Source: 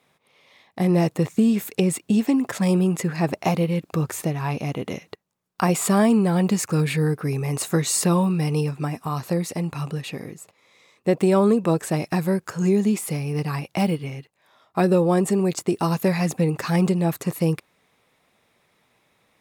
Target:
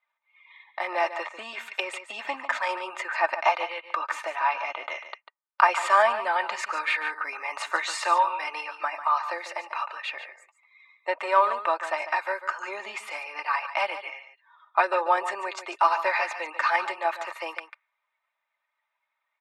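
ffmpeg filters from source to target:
ffmpeg -i in.wav -filter_complex "[0:a]asettb=1/sr,asplit=3[link_01][link_02][link_03];[link_01]atrim=end=10.154[link_04];[link_02]atrim=start=10.15:end=12.8,asetpts=PTS-STARTPTS,afade=type=in:duration=0.004:curve=qsin,afade=type=out:start_time=2.646:duration=0.004:curve=qsin,aeval=exprs='if(lt(val(0),0),0.708*val(0),val(0))':channel_layout=same[link_05];[link_03]atrim=start=12.796[link_06];[link_04][link_05]acrossfade=duration=0.004:curve1=hsin:curve2=qsin[link_07];[link_07][link_06]acrossfade=duration=0.004:curve1=qsin:curve2=hsin,highpass=frequency=850:width=0.5412,highpass=frequency=850:width=1.3066,afftdn=noise_reduction=21:noise_floor=-55,lowpass=2200,aecho=1:1:3.3:0.65,aecho=1:1:145:0.266,volume=7.5dB" out.wav

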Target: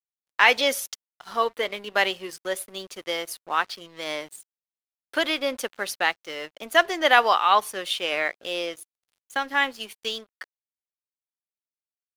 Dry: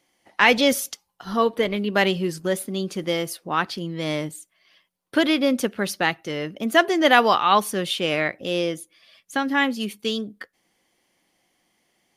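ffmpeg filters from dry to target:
ffmpeg -i in.wav -af "highpass=580,aeval=exprs='sgn(val(0))*max(abs(val(0))-0.00562,0)':channel_layout=same,adynamicequalizer=threshold=0.02:dfrequency=3600:dqfactor=0.7:tfrequency=3600:tqfactor=0.7:attack=5:release=100:ratio=0.375:range=2:mode=cutabove:tftype=highshelf" out.wav

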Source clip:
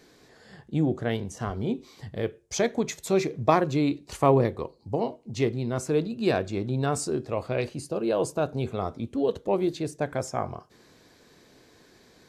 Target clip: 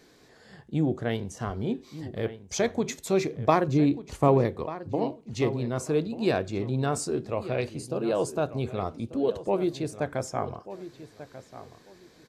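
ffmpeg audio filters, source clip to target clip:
ffmpeg -i in.wav -filter_complex "[0:a]asettb=1/sr,asplit=3[link_01][link_02][link_03];[link_01]atrim=end=3.684[link_04];[link_02]atrim=start=3.68:end=4.28,asetpts=PTS-STARTPTS,afade=type=in:duration=0.004:curve=qsin,afade=type=out:start_time=0.596:duration=0.004:curve=qsin,tiltshelf=frequency=630:gain=5[link_05];[link_03]atrim=start=4.276[link_06];[link_04][link_05]acrossfade=duration=0.004:curve1=hsin:curve2=qsin[link_07];[link_07][link_06]acrossfade=duration=0.004:curve1=qsin:curve2=hsin,asplit=2[link_08][link_09];[link_09]adelay=1190,lowpass=frequency=3100:poles=1,volume=-14dB,asplit=2[link_10][link_11];[link_11]adelay=1190,lowpass=frequency=3100:poles=1,volume=0.21[link_12];[link_08][link_10][link_12]amix=inputs=3:normalize=0,volume=-1dB" out.wav

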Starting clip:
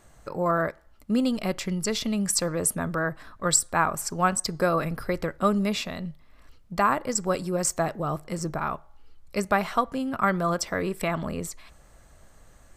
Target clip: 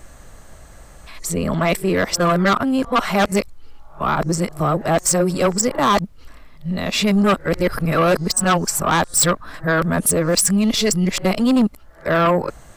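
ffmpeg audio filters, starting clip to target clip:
ffmpeg -i in.wav -af "areverse,aeval=exprs='0.473*(cos(1*acos(clip(val(0)/0.473,-1,1)))-cos(1*PI/2))+0.0531*(cos(5*acos(clip(val(0)/0.473,-1,1)))-cos(5*PI/2))':channel_layout=same,aeval=exprs='0.473*sin(PI/2*2.51*val(0)/0.473)':channel_layout=same,volume=-4.5dB" out.wav

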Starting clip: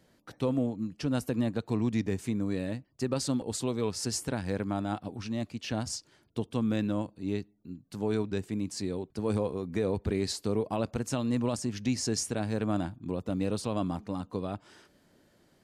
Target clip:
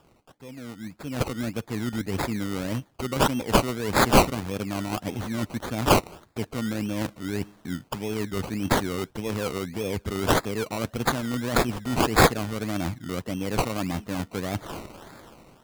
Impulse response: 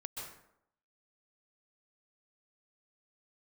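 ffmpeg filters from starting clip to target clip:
-af "areverse,acompressor=threshold=-41dB:ratio=8,areverse,aexciter=amount=14.2:drive=2.5:freq=7300,acrusher=samples=21:mix=1:aa=0.000001:lfo=1:lforange=12.6:lforate=1.7,dynaudnorm=framelen=430:gausssize=5:maxgain=15dB"

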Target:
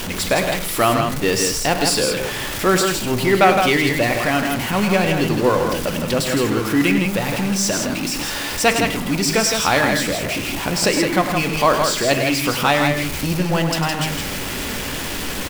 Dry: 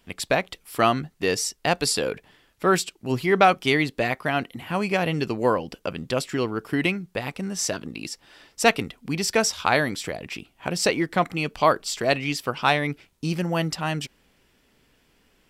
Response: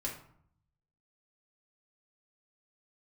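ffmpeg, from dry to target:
-filter_complex "[0:a]aeval=exprs='val(0)+0.5*0.0708*sgn(val(0))':channel_layout=same,aecho=1:1:102|163:0.316|0.562,asplit=2[link_01][link_02];[1:a]atrim=start_sample=2205[link_03];[link_02][link_03]afir=irnorm=-1:irlink=0,volume=-7.5dB[link_04];[link_01][link_04]amix=inputs=2:normalize=0,volume=-1dB"

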